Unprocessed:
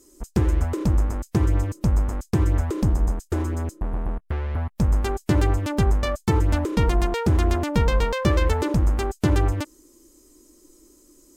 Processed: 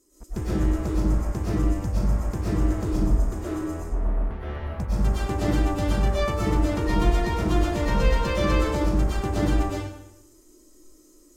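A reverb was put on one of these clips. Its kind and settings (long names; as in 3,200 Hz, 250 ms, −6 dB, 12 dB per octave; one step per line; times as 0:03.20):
comb and all-pass reverb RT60 0.86 s, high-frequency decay 0.85×, pre-delay 80 ms, DRR −9.5 dB
level −10.5 dB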